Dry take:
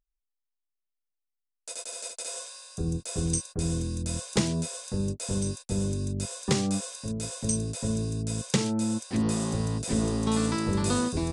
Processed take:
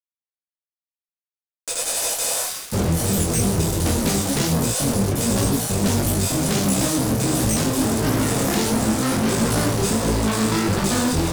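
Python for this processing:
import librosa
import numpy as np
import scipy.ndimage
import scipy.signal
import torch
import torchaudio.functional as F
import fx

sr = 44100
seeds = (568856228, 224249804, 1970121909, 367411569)

y = fx.echo_pitch(x, sr, ms=386, semitones=3, count=2, db_per_echo=-3.0)
y = fx.fuzz(y, sr, gain_db=41.0, gate_db=-41.0)
y = fx.detune_double(y, sr, cents=51)
y = F.gain(torch.from_numpy(y), -1.5).numpy()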